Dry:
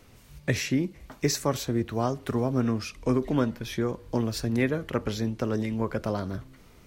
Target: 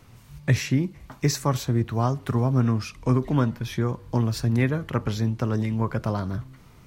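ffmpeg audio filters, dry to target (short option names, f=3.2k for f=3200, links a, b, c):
-af "equalizer=f=125:t=o:w=1:g=9,equalizer=f=500:t=o:w=1:g=-3,equalizer=f=1k:t=o:w=1:g=5"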